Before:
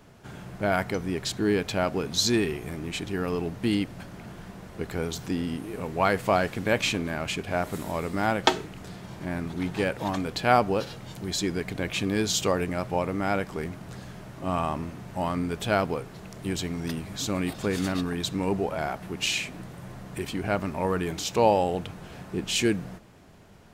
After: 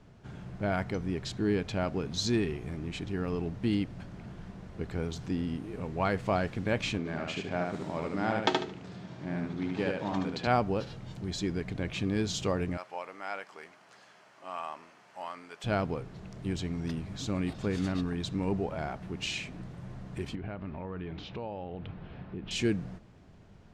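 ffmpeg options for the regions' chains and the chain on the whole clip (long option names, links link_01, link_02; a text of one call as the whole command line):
ffmpeg -i in.wav -filter_complex "[0:a]asettb=1/sr,asplit=3[link_01][link_02][link_03];[link_01]atrim=end=6.984[link_04];[link_02]atrim=start=6.98:end=10.47,asetpts=PTS-STARTPTS,afade=type=in:duration=0.004:curve=qsin,afade=type=out:start_time=3.486:duration=0.004:curve=qsin,highpass=150,lowpass=7400,aecho=1:1:74|148|222|296:0.708|0.184|0.0479|0.0124,atrim=end_sample=153909[link_05];[link_03]atrim=start=10.466[link_06];[link_04][link_05]acrossfade=duration=0.004:curve1=hsin:curve2=qsin[link_07];[link_07][link_06]acrossfade=duration=0.004:curve1=qsin:curve2=hsin,asettb=1/sr,asplit=3[link_08][link_09][link_10];[link_08]atrim=end=12.774[link_11];[link_09]atrim=start=12.77:end=15.64,asetpts=PTS-STARTPTS,afade=type=in:duration=0.004:curve=qsin,afade=type=out:start_time=2.866:duration=0.004:curve=qsin,highpass=810,bandreject=frequency=3700:width=14[link_12];[link_10]atrim=start=15.636[link_13];[link_11][link_12]acrossfade=duration=0.004:curve1=hsin:curve2=qsin[link_14];[link_14][link_13]acrossfade=duration=0.004:curve1=qsin:curve2=hsin,asettb=1/sr,asplit=3[link_15][link_16][link_17];[link_15]atrim=end=20.354[link_18];[link_16]atrim=start=20.35:end=22.51,asetpts=PTS-STARTPTS,afade=type=in:duration=0.004:curve=qsin,afade=type=out:start_time=2.156:duration=0.004:curve=qsin,lowpass=frequency=3600:width=0.5412,lowpass=frequency=3600:width=1.3066,acompressor=threshold=-33dB:ratio=3:attack=3.2:release=140:knee=1:detection=peak[link_19];[link_17]atrim=start=22.506[link_20];[link_18][link_19]acrossfade=duration=0.004:curve1=hsin:curve2=qsin[link_21];[link_21][link_20]acrossfade=duration=0.004:curve1=qsin:curve2=hsin,lowpass=6500,lowshelf=frequency=240:gain=8.5,volume=-7.5dB" out.wav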